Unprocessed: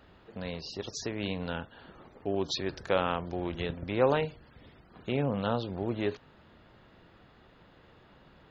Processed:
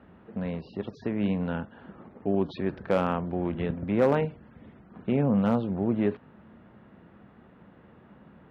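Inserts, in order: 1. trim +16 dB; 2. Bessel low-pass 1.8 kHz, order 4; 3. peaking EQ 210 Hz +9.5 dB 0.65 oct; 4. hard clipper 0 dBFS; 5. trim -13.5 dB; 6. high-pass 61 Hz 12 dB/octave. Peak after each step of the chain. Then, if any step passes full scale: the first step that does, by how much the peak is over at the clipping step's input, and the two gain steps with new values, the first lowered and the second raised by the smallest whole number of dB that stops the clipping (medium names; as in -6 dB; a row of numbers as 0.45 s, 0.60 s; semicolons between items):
+4.5 dBFS, +4.0 dBFS, +5.5 dBFS, 0.0 dBFS, -13.5 dBFS, -12.0 dBFS; step 1, 5.5 dB; step 1 +10 dB, step 5 -7.5 dB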